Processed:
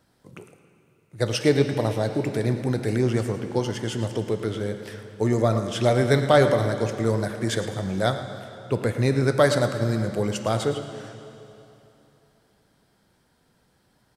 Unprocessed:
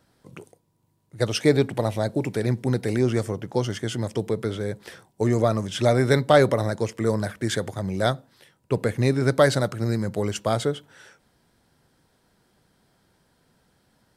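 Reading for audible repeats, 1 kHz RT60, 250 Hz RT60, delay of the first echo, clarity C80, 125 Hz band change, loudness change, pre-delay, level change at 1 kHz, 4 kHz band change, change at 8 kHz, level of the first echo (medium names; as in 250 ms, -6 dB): 1, 3.0 s, 3.1 s, 111 ms, 8.0 dB, +0.5 dB, 0.0 dB, 5 ms, 0.0 dB, 0.0 dB, -0.5 dB, -13.5 dB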